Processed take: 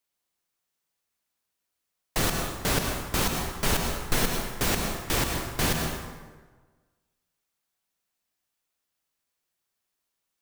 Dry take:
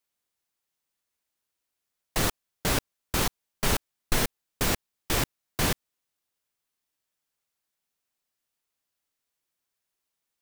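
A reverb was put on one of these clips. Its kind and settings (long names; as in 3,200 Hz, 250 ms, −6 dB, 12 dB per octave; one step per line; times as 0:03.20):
dense smooth reverb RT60 1.4 s, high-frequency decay 0.65×, pre-delay 95 ms, DRR 2.5 dB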